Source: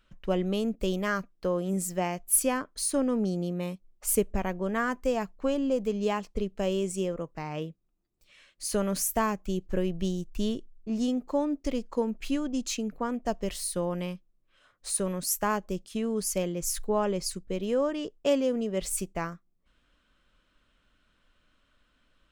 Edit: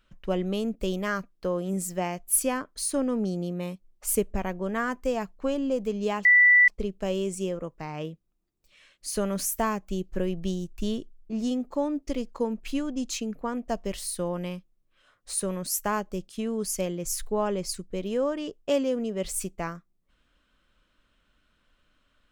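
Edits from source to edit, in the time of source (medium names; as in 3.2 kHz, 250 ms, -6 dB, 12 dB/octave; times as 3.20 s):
6.25 s: add tone 1.97 kHz -13.5 dBFS 0.43 s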